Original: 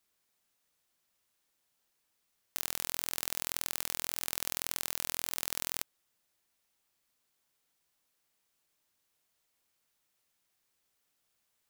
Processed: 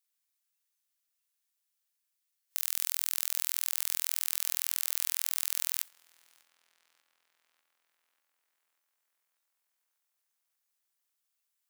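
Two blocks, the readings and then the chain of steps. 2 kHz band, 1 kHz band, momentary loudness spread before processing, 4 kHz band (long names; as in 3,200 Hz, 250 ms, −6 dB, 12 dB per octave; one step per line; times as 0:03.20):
−1.5 dB, −6.5 dB, 3 LU, +0.5 dB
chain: noise reduction from a noise print of the clip's start 13 dB
high-pass filter 1,200 Hz 12 dB per octave
high-shelf EQ 5,600 Hz +7.5 dB
transient designer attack −7 dB, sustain +11 dB
tape delay 592 ms, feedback 74%, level −24 dB, low-pass 4,200 Hz
level +3.5 dB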